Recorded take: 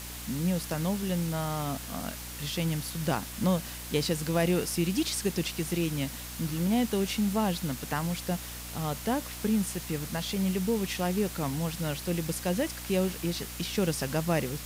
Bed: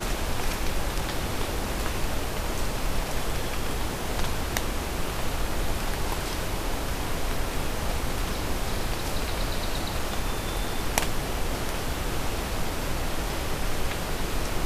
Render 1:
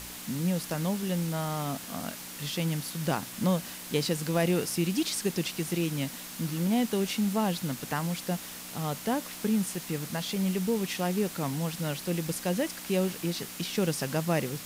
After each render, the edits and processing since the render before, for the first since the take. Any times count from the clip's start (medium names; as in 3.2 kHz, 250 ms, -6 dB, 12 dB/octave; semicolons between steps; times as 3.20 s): de-hum 60 Hz, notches 2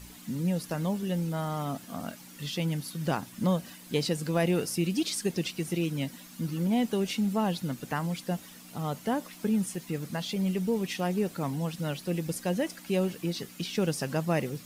noise reduction 11 dB, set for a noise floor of -42 dBFS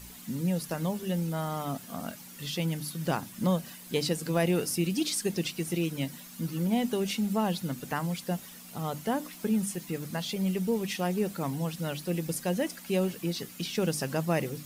treble shelf 9.9 kHz +6 dB; hum notches 50/100/150/200/250/300 Hz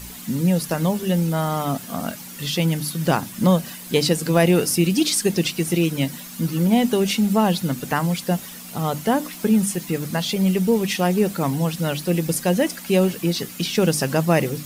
trim +10 dB